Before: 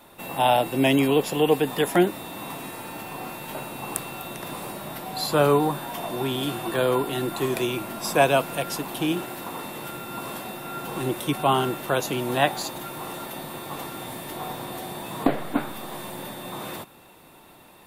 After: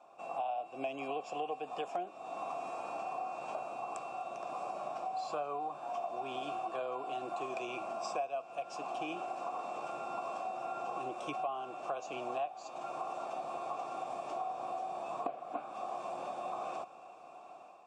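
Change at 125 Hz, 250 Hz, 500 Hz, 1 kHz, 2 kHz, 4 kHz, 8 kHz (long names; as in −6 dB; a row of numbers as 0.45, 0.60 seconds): −29.0, −22.0, −14.5, −8.5, −17.5, −20.5, −21.5 decibels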